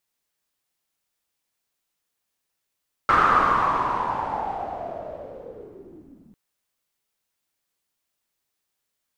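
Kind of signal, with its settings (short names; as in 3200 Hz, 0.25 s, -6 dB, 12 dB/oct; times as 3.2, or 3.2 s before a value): swept filtered noise white, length 3.25 s lowpass, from 1300 Hz, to 200 Hz, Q 7.1, linear, gain ramp -26.5 dB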